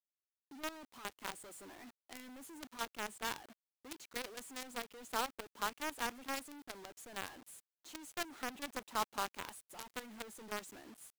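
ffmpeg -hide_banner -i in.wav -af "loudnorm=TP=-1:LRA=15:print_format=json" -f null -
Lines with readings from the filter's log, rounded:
"input_i" : "-43.7",
"input_tp" : "-24.4",
"input_lra" : "3.4",
"input_thresh" : "-54.0",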